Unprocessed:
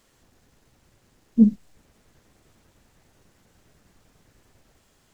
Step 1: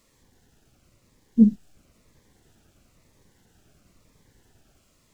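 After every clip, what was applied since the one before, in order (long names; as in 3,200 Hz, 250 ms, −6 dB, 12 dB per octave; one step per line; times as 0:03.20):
phaser whose notches keep moving one way falling 1 Hz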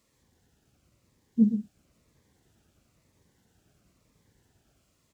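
high-pass filter 57 Hz
low-shelf EQ 140 Hz +3.5 dB
on a send: single-tap delay 122 ms −9 dB
on the sum: level −7 dB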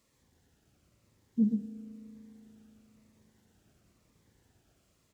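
in parallel at +2 dB: brickwall limiter −23 dBFS, peak gain reduction 11.5 dB
on the sum: spring reverb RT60 3.6 s, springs 37 ms, chirp 20 ms, DRR 8 dB
level −8.5 dB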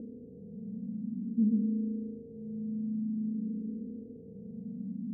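compressor on every frequency bin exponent 0.2
Chebyshev low-pass filter 510 Hz, order 3
frequency shifter mixed with the dry sound +0.51 Hz
level −1.5 dB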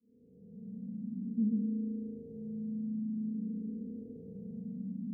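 fade in at the beginning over 1.27 s
parametric band 180 Hz +3 dB 0.36 octaves
in parallel at 0 dB: downward compressor, threshold −41 dBFS, peak gain reduction 17 dB
on the sum: level −6 dB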